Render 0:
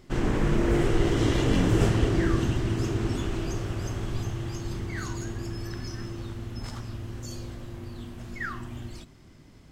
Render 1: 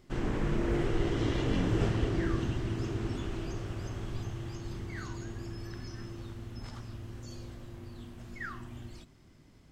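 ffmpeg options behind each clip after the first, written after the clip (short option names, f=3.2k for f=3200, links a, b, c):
-filter_complex "[0:a]acrossover=split=5900[a][b];[b]acompressor=threshold=-56dB:ratio=4:attack=1:release=60[c];[a][c]amix=inputs=2:normalize=0,volume=-6.5dB"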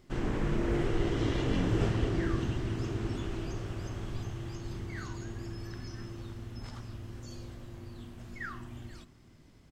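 -af "aecho=1:1:486:0.0891"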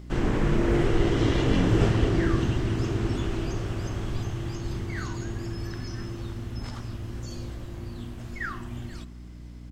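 -af "aeval=exprs='val(0)+0.00398*(sin(2*PI*60*n/s)+sin(2*PI*2*60*n/s)/2+sin(2*PI*3*60*n/s)/3+sin(2*PI*4*60*n/s)/4+sin(2*PI*5*60*n/s)/5)':c=same,volume=7dB"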